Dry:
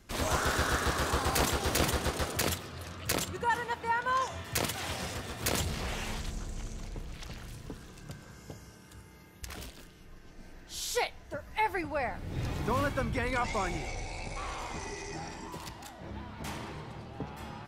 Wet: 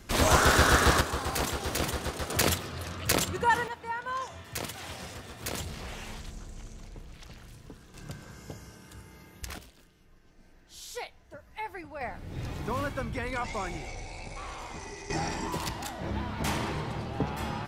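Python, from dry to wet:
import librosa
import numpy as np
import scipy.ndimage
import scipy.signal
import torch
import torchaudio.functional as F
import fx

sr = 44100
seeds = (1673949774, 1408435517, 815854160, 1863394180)

y = fx.gain(x, sr, db=fx.steps((0.0, 8.0), (1.01, -2.0), (2.3, 5.0), (3.68, -4.5), (7.94, 3.0), (9.58, -8.0), (12.01, -2.0), (15.1, 9.0)))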